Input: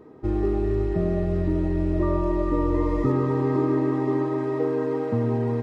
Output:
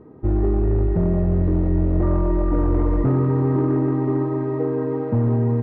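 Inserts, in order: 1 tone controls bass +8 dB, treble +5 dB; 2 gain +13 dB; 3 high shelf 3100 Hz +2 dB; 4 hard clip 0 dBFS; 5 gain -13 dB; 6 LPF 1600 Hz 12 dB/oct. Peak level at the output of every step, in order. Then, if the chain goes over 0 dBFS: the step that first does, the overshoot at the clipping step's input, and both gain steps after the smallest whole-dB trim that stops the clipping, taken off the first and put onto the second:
-6.0, +7.0, +7.0, 0.0, -13.0, -12.5 dBFS; step 2, 7.0 dB; step 2 +6 dB, step 5 -6 dB

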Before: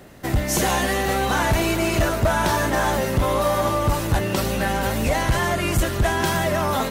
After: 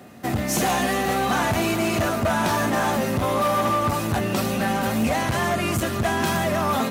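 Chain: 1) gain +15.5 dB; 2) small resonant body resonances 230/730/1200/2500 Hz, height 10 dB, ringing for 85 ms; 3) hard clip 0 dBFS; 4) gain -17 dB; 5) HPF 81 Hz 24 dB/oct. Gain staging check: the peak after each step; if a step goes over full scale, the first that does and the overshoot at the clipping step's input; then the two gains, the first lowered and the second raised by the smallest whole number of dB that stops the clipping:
+3.0, +8.0, 0.0, -17.0, -10.5 dBFS; step 1, 8.0 dB; step 1 +7.5 dB, step 4 -9 dB

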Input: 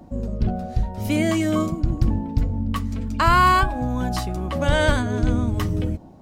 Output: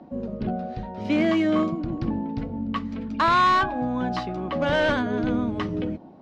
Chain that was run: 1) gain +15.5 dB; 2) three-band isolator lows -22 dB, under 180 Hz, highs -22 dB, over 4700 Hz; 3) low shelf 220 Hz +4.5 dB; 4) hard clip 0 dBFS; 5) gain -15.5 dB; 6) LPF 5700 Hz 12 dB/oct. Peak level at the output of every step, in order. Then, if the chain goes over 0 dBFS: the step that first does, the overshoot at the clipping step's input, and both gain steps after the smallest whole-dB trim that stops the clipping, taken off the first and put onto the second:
+11.0, +8.0, +8.5, 0.0, -15.5, -15.0 dBFS; step 1, 8.5 dB; step 1 +6.5 dB, step 5 -6.5 dB

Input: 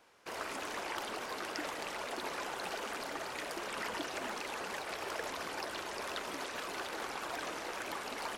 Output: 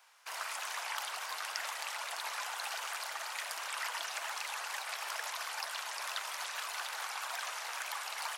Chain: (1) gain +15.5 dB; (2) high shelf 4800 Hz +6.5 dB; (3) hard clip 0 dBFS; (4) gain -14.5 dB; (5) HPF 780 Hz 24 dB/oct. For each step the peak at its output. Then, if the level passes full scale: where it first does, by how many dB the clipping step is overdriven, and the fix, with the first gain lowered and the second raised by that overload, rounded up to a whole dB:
-5.5, -3.0, -3.0, -17.5, -16.5 dBFS; no overload

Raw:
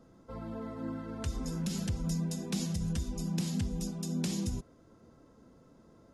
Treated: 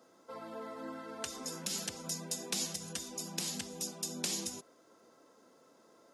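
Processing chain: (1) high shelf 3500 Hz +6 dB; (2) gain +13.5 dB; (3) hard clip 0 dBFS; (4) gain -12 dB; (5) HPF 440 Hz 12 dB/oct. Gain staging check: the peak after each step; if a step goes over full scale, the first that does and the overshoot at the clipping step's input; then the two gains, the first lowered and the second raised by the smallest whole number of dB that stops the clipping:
-18.5, -5.0, -5.0, -17.0, -18.0 dBFS; no overload

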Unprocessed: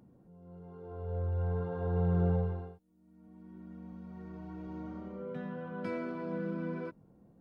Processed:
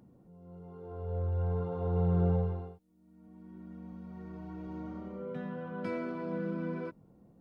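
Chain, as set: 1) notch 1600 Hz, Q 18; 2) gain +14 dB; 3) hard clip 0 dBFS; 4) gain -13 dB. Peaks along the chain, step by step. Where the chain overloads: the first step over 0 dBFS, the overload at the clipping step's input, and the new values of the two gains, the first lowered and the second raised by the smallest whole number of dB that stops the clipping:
-20.0, -6.0, -6.0, -19.0 dBFS; no overload

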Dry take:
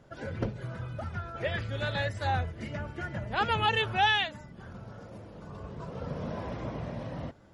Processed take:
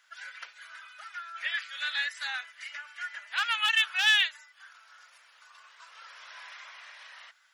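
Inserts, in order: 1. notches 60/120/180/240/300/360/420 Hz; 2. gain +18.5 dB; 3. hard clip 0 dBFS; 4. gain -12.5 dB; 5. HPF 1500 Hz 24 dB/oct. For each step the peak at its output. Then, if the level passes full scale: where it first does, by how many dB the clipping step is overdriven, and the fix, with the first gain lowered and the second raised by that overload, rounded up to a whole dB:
-13.5, +5.0, 0.0, -12.5, -11.5 dBFS; step 2, 5.0 dB; step 2 +13.5 dB, step 4 -7.5 dB

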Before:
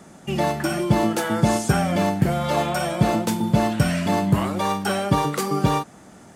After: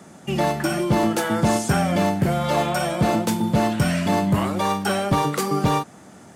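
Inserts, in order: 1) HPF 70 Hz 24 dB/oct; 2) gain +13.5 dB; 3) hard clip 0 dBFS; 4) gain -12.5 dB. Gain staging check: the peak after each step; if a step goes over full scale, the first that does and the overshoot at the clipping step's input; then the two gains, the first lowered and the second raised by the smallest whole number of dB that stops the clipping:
-4.5, +9.0, 0.0, -12.5 dBFS; step 2, 9.0 dB; step 2 +4.5 dB, step 4 -3.5 dB

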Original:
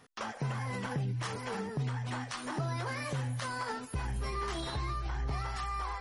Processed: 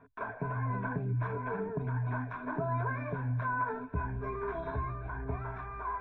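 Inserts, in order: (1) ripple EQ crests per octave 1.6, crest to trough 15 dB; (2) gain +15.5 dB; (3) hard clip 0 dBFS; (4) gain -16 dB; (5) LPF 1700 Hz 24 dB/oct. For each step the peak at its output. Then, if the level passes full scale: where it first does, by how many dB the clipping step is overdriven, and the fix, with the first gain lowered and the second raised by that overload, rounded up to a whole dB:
-20.5, -5.0, -5.0, -21.0, -21.5 dBFS; no overload

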